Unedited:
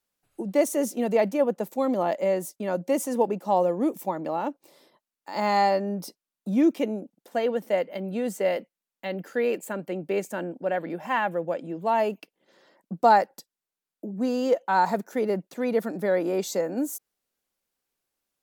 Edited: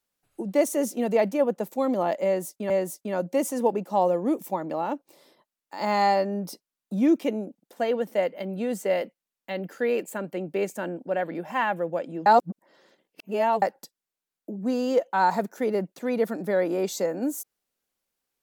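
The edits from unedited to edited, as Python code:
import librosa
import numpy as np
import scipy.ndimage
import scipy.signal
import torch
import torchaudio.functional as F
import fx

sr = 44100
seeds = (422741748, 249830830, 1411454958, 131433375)

y = fx.edit(x, sr, fx.repeat(start_s=2.25, length_s=0.45, count=2),
    fx.reverse_span(start_s=11.81, length_s=1.36), tone=tone)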